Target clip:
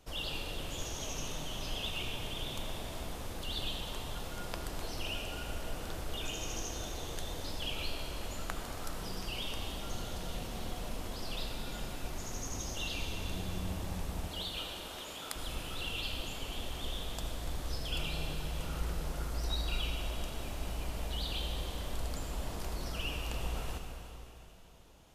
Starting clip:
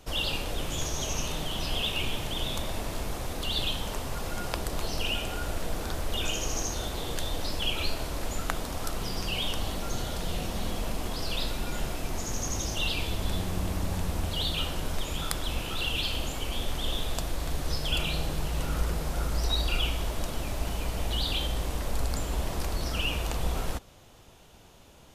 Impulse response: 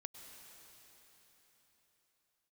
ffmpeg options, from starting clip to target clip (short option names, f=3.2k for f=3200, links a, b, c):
-filter_complex "[0:a]asettb=1/sr,asplit=3[a][b][c];[a]atrim=end=14.264[d];[b]atrim=start=14.26:end=15.36,asetpts=PTS-STARTPTS,afade=t=in:d=0.004:c=qsin,afade=t=out:st=1.096:d=0.004:c=qsin,highpass=320[e];[c]atrim=start=15.356[f];[d][e]acrossfade=d=0.004:c1=hsin:c2=qsin[g];[g][f]acrossfade=d=0.004:c1=qsin:c2=hsin[h];[1:a]atrim=start_sample=2205,asetrate=61740,aresample=44100[i];[h][i]afir=irnorm=-1:irlink=0"